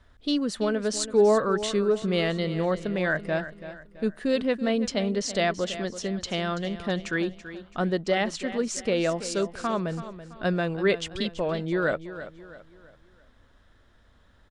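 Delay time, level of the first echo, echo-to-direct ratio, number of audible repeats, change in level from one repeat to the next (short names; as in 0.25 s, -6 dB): 0.332 s, -13.0 dB, -12.0 dB, 3, -8.0 dB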